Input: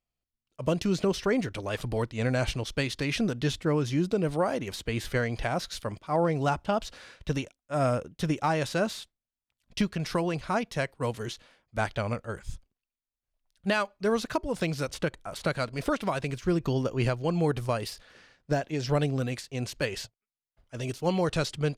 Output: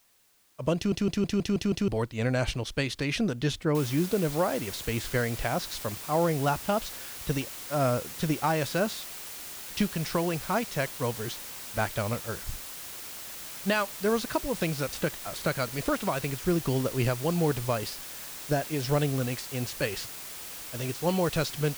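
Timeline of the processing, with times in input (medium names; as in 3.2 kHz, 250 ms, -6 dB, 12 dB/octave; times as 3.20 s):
0.76 s: stutter in place 0.16 s, 7 plays
3.75 s: noise floor step -65 dB -41 dB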